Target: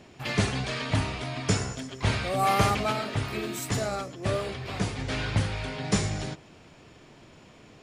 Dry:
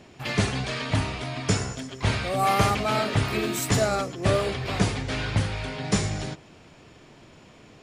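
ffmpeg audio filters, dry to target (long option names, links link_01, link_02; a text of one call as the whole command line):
ffmpeg -i in.wav -filter_complex "[0:a]asplit=3[link_01][link_02][link_03];[link_01]afade=type=out:start_time=2.91:duration=0.02[link_04];[link_02]flanger=delay=8.1:depth=1.4:regen=-82:speed=1.6:shape=triangular,afade=type=in:start_time=2.91:duration=0.02,afade=type=out:start_time=4.98:duration=0.02[link_05];[link_03]afade=type=in:start_time=4.98:duration=0.02[link_06];[link_04][link_05][link_06]amix=inputs=3:normalize=0,volume=-1.5dB" out.wav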